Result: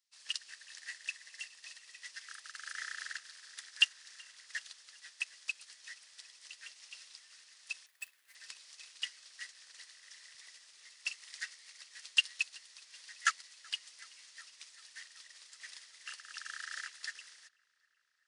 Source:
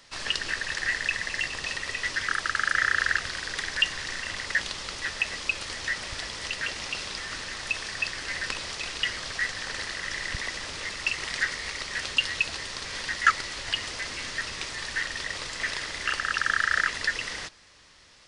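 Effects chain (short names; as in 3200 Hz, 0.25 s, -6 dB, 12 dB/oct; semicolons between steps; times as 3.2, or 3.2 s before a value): 7.86–8.35 median filter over 9 samples; differentiator; on a send: darkening echo 0.378 s, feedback 83%, low-pass 3900 Hz, level -12 dB; on the sum: upward expander 2.5:1, over -48 dBFS; gain +5.5 dB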